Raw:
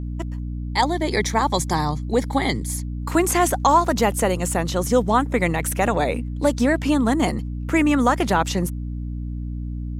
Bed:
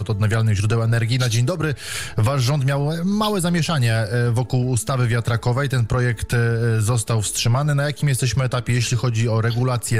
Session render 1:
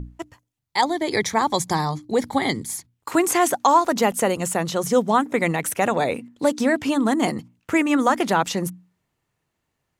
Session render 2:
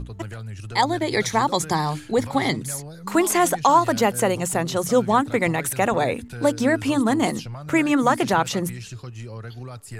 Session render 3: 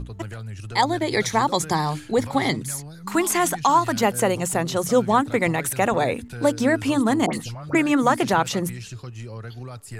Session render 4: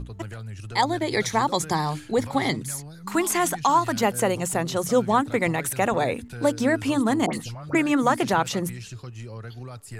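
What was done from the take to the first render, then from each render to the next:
hum notches 60/120/180/240/300 Hz
add bed -16.5 dB
2.63–4.03 s: peaking EQ 520 Hz -9 dB 0.74 oct; 7.26–7.75 s: phase dispersion highs, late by 73 ms, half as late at 1.6 kHz
trim -2 dB

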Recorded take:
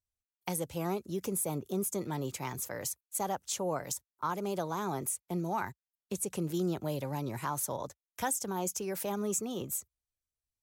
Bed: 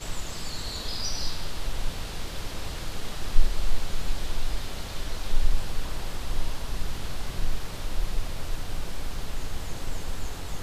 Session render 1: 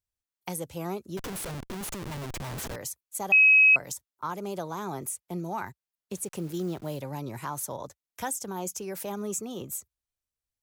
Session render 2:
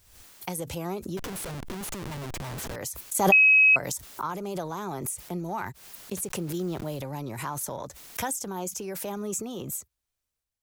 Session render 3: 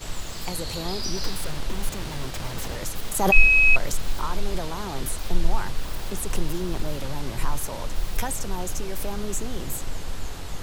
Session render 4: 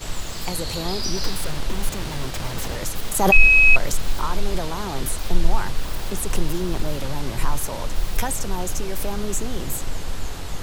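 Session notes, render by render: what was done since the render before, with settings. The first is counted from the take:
1.17–2.76 s: Schmitt trigger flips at -41 dBFS; 3.32–3.76 s: bleep 2.55 kHz -14 dBFS; 6.15–6.99 s: send-on-delta sampling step -50 dBFS
transient shaper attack +2 dB, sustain +6 dB; swell ahead of each attack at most 64 dB/s
add bed +0.5 dB
trim +3.5 dB; peak limiter -1 dBFS, peak gain reduction 3 dB

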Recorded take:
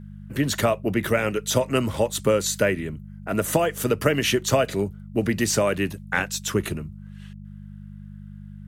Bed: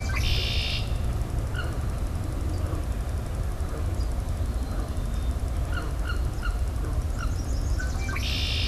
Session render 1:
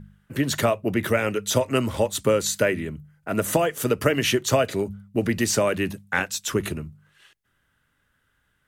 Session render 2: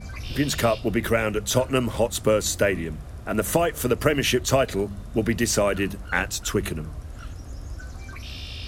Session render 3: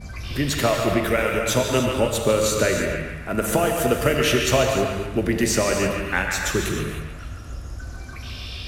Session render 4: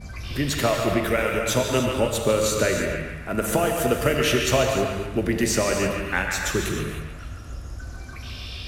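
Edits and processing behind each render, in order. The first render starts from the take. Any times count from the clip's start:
de-hum 50 Hz, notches 4
add bed -9 dB
on a send: band-passed feedback delay 143 ms, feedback 55%, band-pass 1.7 kHz, level -5 dB; on the sum: gated-style reverb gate 340 ms flat, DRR 2.5 dB
trim -1.5 dB

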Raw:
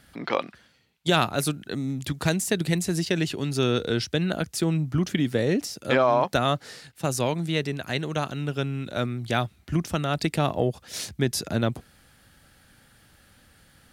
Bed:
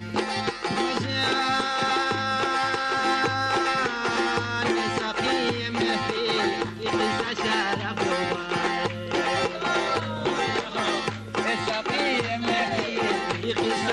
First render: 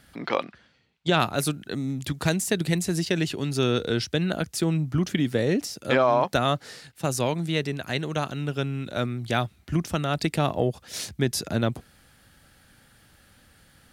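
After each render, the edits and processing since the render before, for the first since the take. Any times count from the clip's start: 0.44–1.20 s: distance through air 88 m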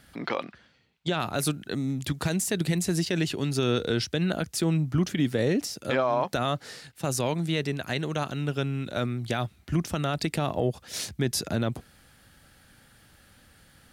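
peak limiter -15 dBFS, peak gain reduction 8.5 dB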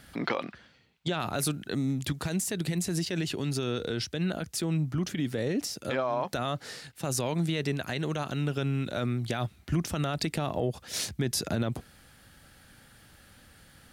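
peak limiter -20 dBFS, peak gain reduction 5 dB; gain riding within 3 dB 2 s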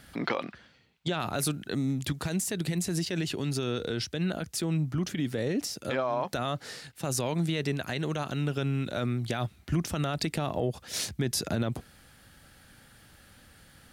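no audible change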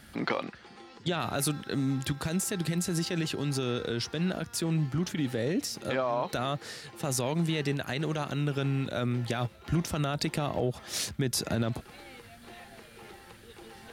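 add bed -25 dB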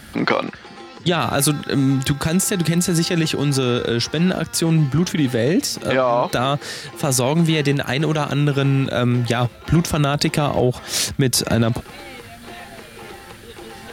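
trim +12 dB

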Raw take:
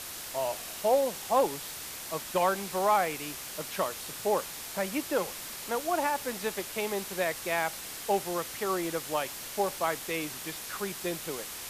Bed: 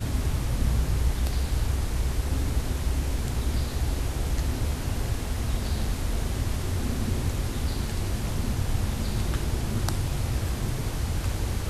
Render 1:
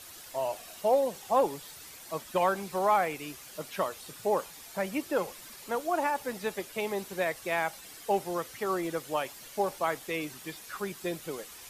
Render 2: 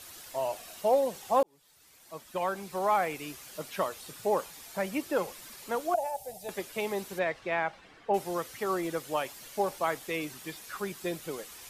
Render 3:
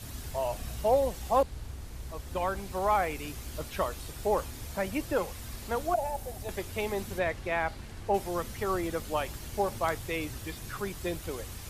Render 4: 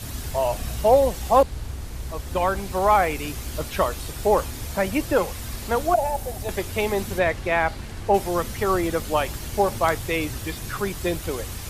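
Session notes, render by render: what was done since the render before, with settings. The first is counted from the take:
noise reduction 10 dB, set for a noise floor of -41 dBFS
1.43–3.20 s: fade in; 5.94–6.49 s: FFT filter 130 Hz 0 dB, 290 Hz -24 dB, 750 Hz +8 dB, 1.1 kHz -28 dB, 2.6 kHz -13 dB, 9.7 kHz 0 dB; 7.18–8.13 s: low-pass 4 kHz -> 1.9 kHz
add bed -15 dB
trim +8.5 dB

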